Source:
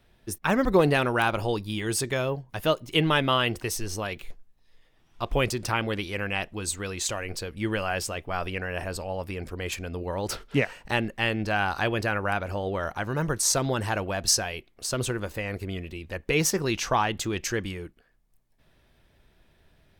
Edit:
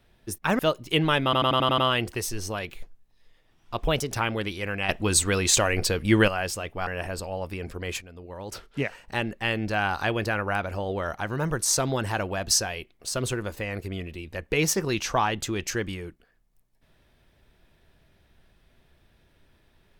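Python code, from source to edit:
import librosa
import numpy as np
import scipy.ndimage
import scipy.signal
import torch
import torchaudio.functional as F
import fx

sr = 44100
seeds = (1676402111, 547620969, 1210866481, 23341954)

y = fx.edit(x, sr, fx.cut(start_s=0.59, length_s=2.02),
    fx.stutter(start_s=3.26, slice_s=0.09, count=7),
    fx.speed_span(start_s=5.36, length_s=0.3, speed=1.16),
    fx.clip_gain(start_s=6.41, length_s=1.39, db=9.0),
    fx.cut(start_s=8.39, length_s=0.25),
    fx.fade_in_from(start_s=9.78, length_s=1.64, floor_db=-13.0), tone=tone)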